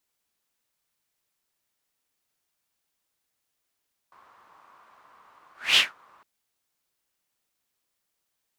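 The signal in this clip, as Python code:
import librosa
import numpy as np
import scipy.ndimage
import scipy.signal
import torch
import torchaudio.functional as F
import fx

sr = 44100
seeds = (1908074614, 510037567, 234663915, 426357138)

y = fx.whoosh(sr, seeds[0], length_s=2.11, peak_s=1.65, rise_s=0.24, fall_s=0.19, ends_hz=1100.0, peak_hz=3100.0, q=4.3, swell_db=39)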